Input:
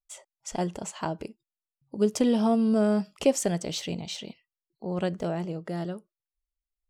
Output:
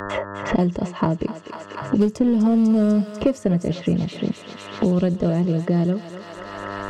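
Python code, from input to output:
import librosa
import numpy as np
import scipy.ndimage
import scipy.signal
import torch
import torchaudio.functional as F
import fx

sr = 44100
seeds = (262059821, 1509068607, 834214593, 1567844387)

p1 = fx.env_lowpass(x, sr, base_hz=2600.0, full_db=-21.5)
p2 = fx.riaa(p1, sr, side='playback')
p3 = fx.dmg_buzz(p2, sr, base_hz=100.0, harmonics=18, level_db=-62.0, tilt_db=-1, odd_only=False)
p4 = fx.notch_comb(p3, sr, f0_hz=780.0)
p5 = np.clip(p4, -10.0 ** (-18.5 / 20.0), 10.0 ** (-18.5 / 20.0))
p6 = p4 + (p5 * 10.0 ** (-5.5 / 20.0))
p7 = fx.bass_treble(p6, sr, bass_db=-1, treble_db=4)
p8 = fx.echo_thinned(p7, sr, ms=247, feedback_pct=76, hz=1000.0, wet_db=-10.5)
y = fx.band_squash(p8, sr, depth_pct=100)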